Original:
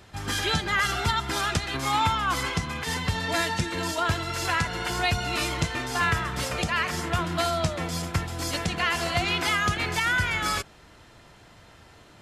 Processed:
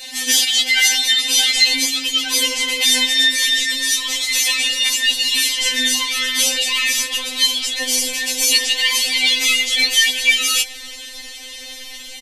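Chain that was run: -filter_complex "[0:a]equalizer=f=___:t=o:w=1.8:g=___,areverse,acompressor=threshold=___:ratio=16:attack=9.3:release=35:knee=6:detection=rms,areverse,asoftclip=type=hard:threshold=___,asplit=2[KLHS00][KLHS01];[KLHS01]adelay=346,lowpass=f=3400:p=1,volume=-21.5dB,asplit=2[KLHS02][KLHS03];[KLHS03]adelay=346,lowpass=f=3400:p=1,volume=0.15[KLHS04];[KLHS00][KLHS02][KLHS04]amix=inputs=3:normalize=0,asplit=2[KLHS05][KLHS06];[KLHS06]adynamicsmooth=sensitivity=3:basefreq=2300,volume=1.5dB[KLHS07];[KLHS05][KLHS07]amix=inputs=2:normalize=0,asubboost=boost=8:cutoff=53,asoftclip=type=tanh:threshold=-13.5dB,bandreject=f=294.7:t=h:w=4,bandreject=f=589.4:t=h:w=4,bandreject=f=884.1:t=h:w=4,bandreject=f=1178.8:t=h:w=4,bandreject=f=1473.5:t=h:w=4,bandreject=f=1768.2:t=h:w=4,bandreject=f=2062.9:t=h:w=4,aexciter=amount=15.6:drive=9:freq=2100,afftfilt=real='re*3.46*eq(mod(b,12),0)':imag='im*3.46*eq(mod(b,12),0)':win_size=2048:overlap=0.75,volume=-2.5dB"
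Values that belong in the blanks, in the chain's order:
410, 11.5, -30dB, -22dB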